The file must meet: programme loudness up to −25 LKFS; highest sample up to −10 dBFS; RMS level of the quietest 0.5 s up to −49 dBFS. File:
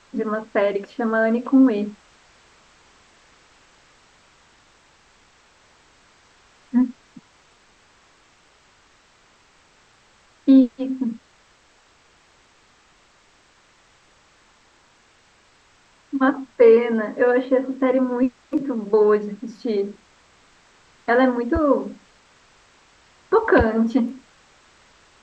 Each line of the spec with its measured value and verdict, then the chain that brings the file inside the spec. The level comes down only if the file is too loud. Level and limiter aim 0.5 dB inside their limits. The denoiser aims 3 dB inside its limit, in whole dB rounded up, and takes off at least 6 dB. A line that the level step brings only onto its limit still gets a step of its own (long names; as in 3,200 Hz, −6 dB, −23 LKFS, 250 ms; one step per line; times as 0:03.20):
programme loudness −20.0 LKFS: out of spec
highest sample −3.5 dBFS: out of spec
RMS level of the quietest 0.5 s −57 dBFS: in spec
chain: level −5.5 dB
brickwall limiter −10.5 dBFS